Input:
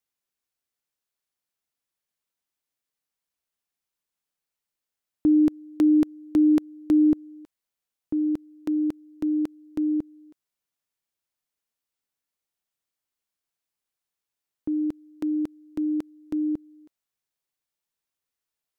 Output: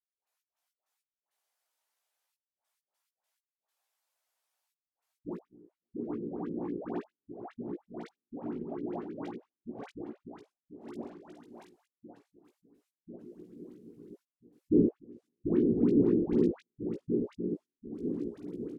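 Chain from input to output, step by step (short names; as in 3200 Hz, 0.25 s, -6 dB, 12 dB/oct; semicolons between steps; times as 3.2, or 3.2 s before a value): regenerating reverse delay 0.524 s, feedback 65%, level -3.5 dB; treble ducked by the level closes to 1100 Hz, closed at -20.5 dBFS; limiter -21.5 dBFS, peak gain reduction 11 dB; step gate ".x.x.x..xxxxxxx." 101 bpm -60 dB; high-pass sweep 720 Hz -> 120 Hz, 12.48–14.8; whisperiser; doubler 17 ms -3 dB; dispersion highs, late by 0.121 s, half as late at 790 Hz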